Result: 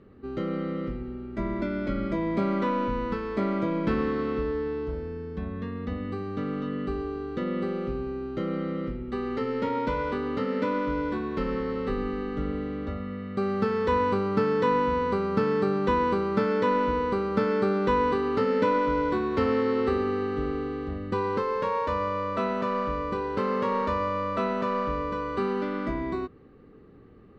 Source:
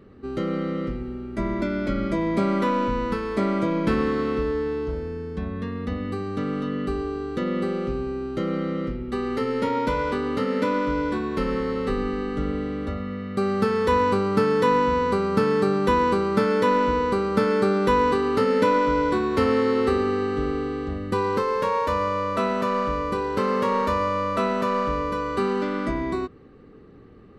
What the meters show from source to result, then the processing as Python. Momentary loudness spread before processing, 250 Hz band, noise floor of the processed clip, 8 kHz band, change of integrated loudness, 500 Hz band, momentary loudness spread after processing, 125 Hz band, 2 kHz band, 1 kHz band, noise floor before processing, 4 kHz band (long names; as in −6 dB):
9 LU, −3.5 dB, −39 dBFS, can't be measured, −4.0 dB, −4.0 dB, 9 LU, −3.5 dB, −4.5 dB, −4.0 dB, −35 dBFS, −6.5 dB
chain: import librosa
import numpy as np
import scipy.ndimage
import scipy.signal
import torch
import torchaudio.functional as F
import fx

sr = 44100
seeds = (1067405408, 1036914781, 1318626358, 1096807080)

y = fx.air_absorb(x, sr, metres=120.0)
y = F.gain(torch.from_numpy(y), -3.5).numpy()